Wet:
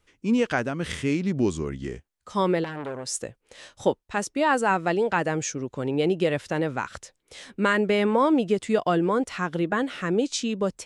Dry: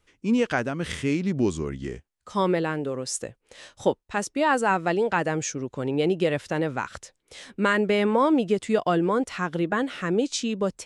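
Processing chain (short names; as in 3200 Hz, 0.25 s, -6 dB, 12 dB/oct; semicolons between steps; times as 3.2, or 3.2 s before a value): 2.64–3.21 core saturation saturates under 1900 Hz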